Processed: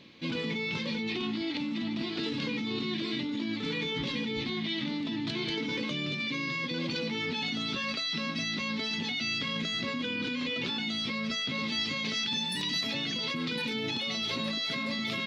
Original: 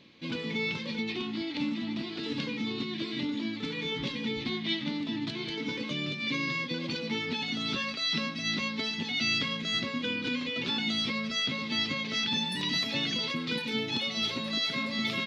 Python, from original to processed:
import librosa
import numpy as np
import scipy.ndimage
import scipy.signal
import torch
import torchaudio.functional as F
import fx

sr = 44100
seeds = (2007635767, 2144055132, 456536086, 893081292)

p1 = fx.high_shelf(x, sr, hz=4500.0, db=8.0, at=(11.68, 12.81))
p2 = fx.over_compress(p1, sr, threshold_db=-35.0, ratio=-0.5)
p3 = p1 + F.gain(torch.from_numpy(p2), 0.5).numpy()
y = F.gain(torch.from_numpy(p3), -5.0).numpy()